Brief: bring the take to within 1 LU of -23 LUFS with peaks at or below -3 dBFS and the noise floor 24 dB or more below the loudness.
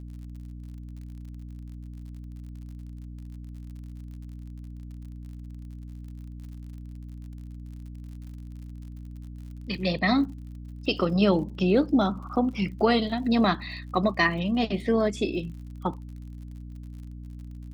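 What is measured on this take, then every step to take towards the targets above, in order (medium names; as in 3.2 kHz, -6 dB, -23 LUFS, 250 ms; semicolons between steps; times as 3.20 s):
tick rate 56 per s; hum 60 Hz; highest harmonic 300 Hz; hum level -37 dBFS; loudness -25.5 LUFS; peak level -9.0 dBFS; loudness target -23.0 LUFS
-> de-click; de-hum 60 Hz, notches 5; trim +2.5 dB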